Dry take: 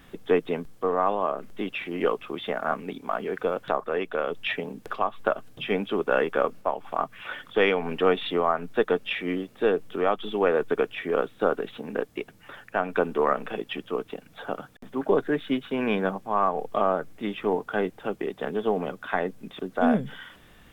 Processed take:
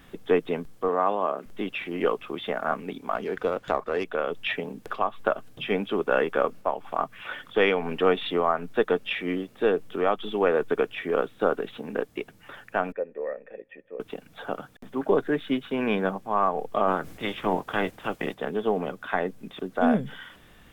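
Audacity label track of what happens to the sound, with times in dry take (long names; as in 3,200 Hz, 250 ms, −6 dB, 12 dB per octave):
0.880000	1.460000	high-pass filter 150 Hz
3.150000	4.040000	windowed peak hold over 3 samples
12.920000	14.000000	formant resonators in series e
16.870000	18.330000	ceiling on every frequency bin ceiling under each frame's peak by 15 dB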